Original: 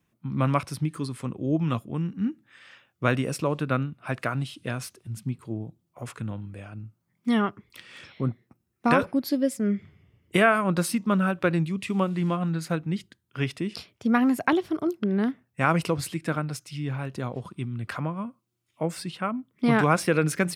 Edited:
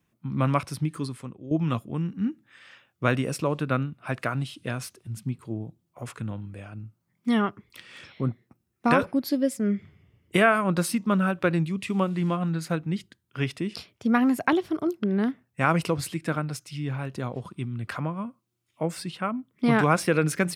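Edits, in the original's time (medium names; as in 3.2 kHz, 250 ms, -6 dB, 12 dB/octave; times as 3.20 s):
1.07–1.51 s: fade out quadratic, to -12 dB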